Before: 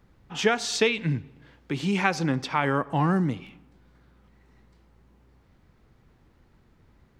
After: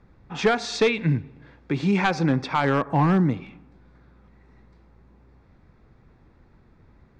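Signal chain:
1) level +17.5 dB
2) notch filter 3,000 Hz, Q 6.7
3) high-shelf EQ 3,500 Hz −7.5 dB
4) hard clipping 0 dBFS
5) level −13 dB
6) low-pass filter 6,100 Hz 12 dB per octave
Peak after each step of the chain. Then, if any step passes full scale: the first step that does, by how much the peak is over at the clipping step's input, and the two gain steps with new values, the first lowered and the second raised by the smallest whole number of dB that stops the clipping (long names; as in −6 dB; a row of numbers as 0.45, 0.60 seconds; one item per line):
+11.5, +11.0, +10.0, 0.0, −13.0, −12.5 dBFS
step 1, 10.0 dB
step 1 +7.5 dB, step 5 −3 dB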